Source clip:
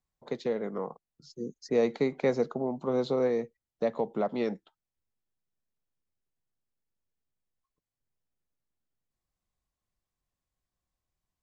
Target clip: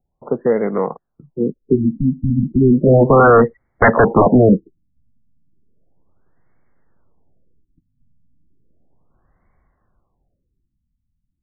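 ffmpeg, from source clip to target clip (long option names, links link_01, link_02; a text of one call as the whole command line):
ffmpeg -i in.wav -af "dynaudnorm=framelen=330:gausssize=13:maxgain=15dB,aeval=exprs='0.631*sin(PI/2*3.98*val(0)/0.631)':channel_layout=same,afftfilt=real='re*lt(b*sr/1024,260*pow(2300/260,0.5+0.5*sin(2*PI*0.34*pts/sr)))':imag='im*lt(b*sr/1024,260*pow(2300/260,0.5+0.5*sin(2*PI*0.34*pts/sr)))':win_size=1024:overlap=0.75,volume=-1dB" out.wav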